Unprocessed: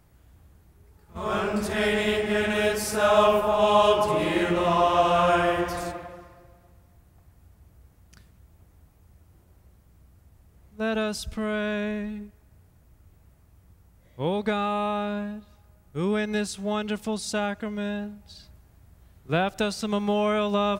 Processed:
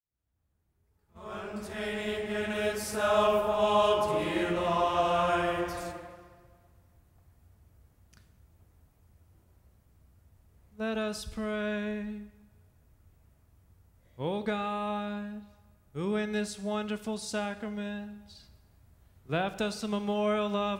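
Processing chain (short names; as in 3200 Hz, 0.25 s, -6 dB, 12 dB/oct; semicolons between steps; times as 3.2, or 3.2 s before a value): opening faded in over 3.24 s; two-slope reverb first 0.89 s, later 3 s, from -26 dB, DRR 11 dB; gain -6 dB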